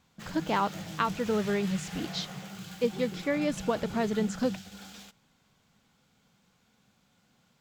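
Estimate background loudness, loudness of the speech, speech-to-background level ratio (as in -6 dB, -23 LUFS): -40.5 LUFS, -31.0 LUFS, 9.5 dB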